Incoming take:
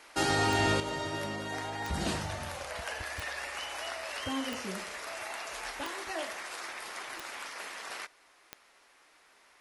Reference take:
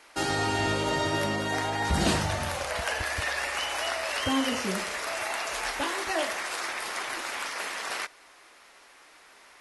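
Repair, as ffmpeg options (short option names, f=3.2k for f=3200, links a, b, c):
-af "adeclick=t=4,asetnsamples=n=441:p=0,asendcmd='0.8 volume volume 8dB',volume=0dB"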